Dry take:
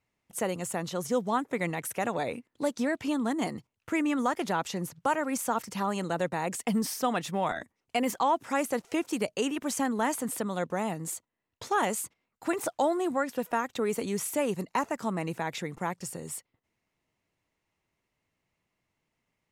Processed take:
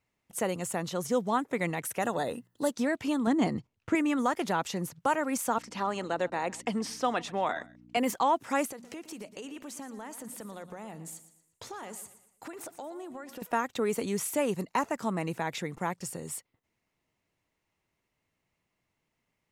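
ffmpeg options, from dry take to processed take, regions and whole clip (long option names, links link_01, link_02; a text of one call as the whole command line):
ffmpeg -i in.wav -filter_complex "[0:a]asettb=1/sr,asplit=3[link_01][link_02][link_03];[link_01]atrim=end=2.024[link_04];[link_02]atrim=start=2.02:end=2.7,asetpts=PTS-STARTPTS,afade=type=in:duration=0.004:curve=qsin,afade=type=out:start_time=0.676:duration=0.004:curve=qsin,asuperstop=centerf=2300:order=4:qfactor=4.1,highshelf=frequency=10000:gain=11.5,bandreject=frequency=60:width_type=h:width=6,bandreject=frequency=120:width_type=h:width=6,bandreject=frequency=180:width_type=h:width=6[link_05];[link_03]atrim=start=2.696[link_06];[link_04][link_05]acrossfade=duration=0.004:curve1=hsin:curve2=qsin[link_07];[link_07][link_06]acrossfade=duration=0.004:curve1=qsin:curve2=hsin,asettb=1/sr,asplit=3[link_08][link_09][link_10];[link_08]atrim=end=3.274[link_11];[link_09]atrim=start=3.27:end=3.95,asetpts=PTS-STARTPTS,afade=type=in:duration=0.004:curve=qsin,afade=type=out:start_time=0.676:duration=0.004:curve=qsin,lowpass=7000,lowshelf=frequency=390:gain=7.5[link_12];[link_10]atrim=start=3.946[link_13];[link_11][link_12]acrossfade=duration=0.004:curve1=hsin:curve2=qsin[link_14];[link_14][link_13]acrossfade=duration=0.004:curve1=qsin:curve2=hsin,asettb=1/sr,asplit=3[link_15][link_16][link_17];[link_15]atrim=end=5.584[link_18];[link_16]atrim=start=5.58:end=7.97,asetpts=PTS-STARTPTS,afade=type=in:duration=0.004:curve=qsin,afade=type=out:start_time=2.386:duration=0.004:curve=qsin,aeval=exprs='val(0)+0.00708*(sin(2*PI*60*n/s)+sin(2*PI*2*60*n/s)/2+sin(2*PI*3*60*n/s)/3+sin(2*PI*4*60*n/s)/4+sin(2*PI*5*60*n/s)/5)':channel_layout=same,highpass=260,lowpass=6300,aecho=1:1:133:0.075,atrim=end_sample=105399[link_19];[link_17]atrim=start=7.966[link_20];[link_18][link_19]acrossfade=duration=0.004:curve1=hsin:curve2=qsin[link_21];[link_21][link_20]acrossfade=duration=0.004:curve1=qsin:curve2=hsin,asettb=1/sr,asplit=3[link_22][link_23][link_24];[link_22]atrim=end=8.714[link_25];[link_23]atrim=start=8.71:end=13.42,asetpts=PTS-STARTPTS,afade=type=in:duration=0.004:curve=qsin,afade=type=out:start_time=4.706:duration=0.004:curve=qsin,bandreject=frequency=60:width_type=h:width=6,bandreject=frequency=120:width_type=h:width=6,bandreject=frequency=180:width_type=h:width=6,bandreject=frequency=240:width_type=h:width=6,acompressor=threshold=-40dB:ratio=5:attack=3.2:release=140:knee=1:detection=peak,aecho=1:1:117|234|351|468:0.211|0.0845|0.0338|0.0135,atrim=end_sample=207711[link_26];[link_24]atrim=start=13.416[link_27];[link_25][link_26]acrossfade=duration=0.004:curve1=hsin:curve2=qsin[link_28];[link_28][link_27]acrossfade=duration=0.004:curve1=qsin:curve2=hsin" out.wav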